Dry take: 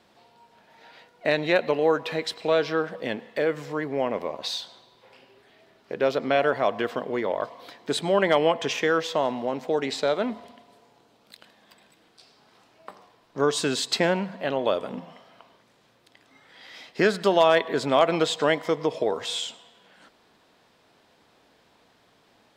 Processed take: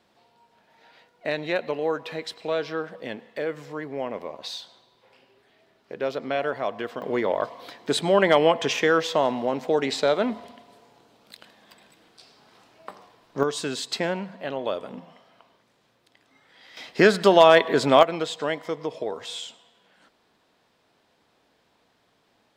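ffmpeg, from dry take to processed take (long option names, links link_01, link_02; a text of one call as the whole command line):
ffmpeg -i in.wav -af "asetnsamples=nb_out_samples=441:pad=0,asendcmd='7.02 volume volume 2.5dB;13.43 volume volume -4dB;16.77 volume volume 4.5dB;18.03 volume volume -5dB',volume=-4.5dB" out.wav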